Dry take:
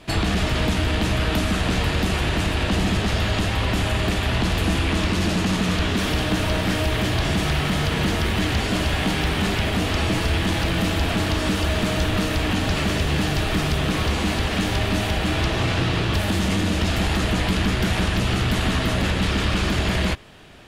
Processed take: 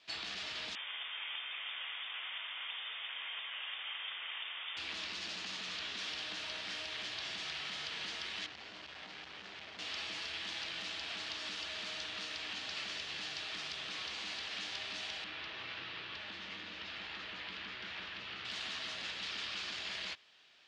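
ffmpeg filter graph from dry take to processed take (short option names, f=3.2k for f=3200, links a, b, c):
-filter_complex "[0:a]asettb=1/sr,asplit=3[a][b][c];[a]atrim=end=0.754[d];[b]atrim=start=0.75:end=4.77,asetpts=PTS-STARTPTS,afade=t=in:d=0.004:c=qsin,afade=t=out:st=4.016:d=0.004:c=qsin,highpass=610,lowpass=f=3.2k:t=q:w=0.5098,lowpass=f=3.2k:t=q:w=0.6013,lowpass=f=3.2k:t=q:w=0.9,lowpass=f=3.2k:t=q:w=2.563,afreqshift=-3800[e];[c]atrim=start=4.766[f];[d][e]acrossfade=d=0.004:c1=hsin:c2=qsin[g];[g][f]acrossfade=d=0.004:c1=qsin:c2=hsin,asettb=1/sr,asplit=3[h][i][j];[h]atrim=end=8.464[k];[i]atrim=start=8.46:end=9.79,asetpts=PTS-STARTPTS,afade=t=in:d=0.004:c=qsin,afade=t=out:st=1.326:d=0.004:c=qsin,lowpass=f=1.4k:p=1,volume=23dB,asoftclip=hard,volume=-23dB[l];[j]atrim=start=9.786[m];[k][l]acrossfade=d=0.004:c1=hsin:c2=qsin[n];[n][m]acrossfade=d=0.004:c1=qsin:c2=hsin,asettb=1/sr,asplit=3[o][p][q];[o]atrim=end=15.244[r];[p]atrim=start=15.24:end=18.45,asetpts=PTS-STARTPTS,afade=t=in:d=0.004:c=qsin,afade=t=out:st=3.206:d=0.004:c=qsin,lowpass=2.9k,equalizer=f=710:t=o:w=0.32:g=-4.5[s];[q]atrim=start=18.446[t];[r][s]acrossfade=d=0.004:c1=hsin:c2=qsin[u];[u][t]acrossfade=d=0.004:c1=qsin:c2=hsin,lowpass=f=5k:w=0.5412,lowpass=f=5k:w=1.3066,aderivative,volume=-4.5dB"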